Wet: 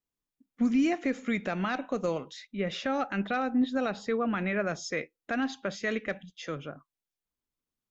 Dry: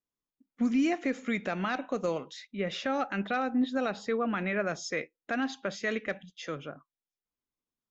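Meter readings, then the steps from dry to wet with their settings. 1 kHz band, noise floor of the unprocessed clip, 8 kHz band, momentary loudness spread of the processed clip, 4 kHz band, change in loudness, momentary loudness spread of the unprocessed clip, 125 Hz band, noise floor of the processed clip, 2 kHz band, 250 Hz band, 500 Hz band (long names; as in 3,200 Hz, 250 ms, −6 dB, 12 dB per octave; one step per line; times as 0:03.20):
0.0 dB, below −85 dBFS, can't be measured, 11 LU, 0.0 dB, +1.0 dB, 10 LU, +2.5 dB, below −85 dBFS, 0.0 dB, +1.5 dB, +0.5 dB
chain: low-shelf EQ 130 Hz +7 dB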